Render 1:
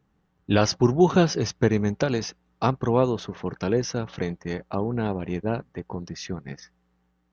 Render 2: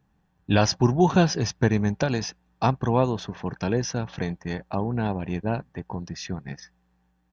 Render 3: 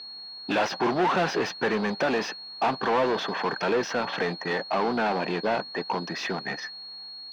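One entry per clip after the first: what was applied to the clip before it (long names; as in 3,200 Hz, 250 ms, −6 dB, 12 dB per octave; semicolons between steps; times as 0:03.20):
comb filter 1.2 ms, depth 35%
steady tone 4,300 Hz −47 dBFS; mid-hump overdrive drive 35 dB, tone 1,800 Hz, clips at −5.5 dBFS; three-way crossover with the lows and the highs turned down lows −23 dB, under 200 Hz, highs −13 dB, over 4,900 Hz; level −9 dB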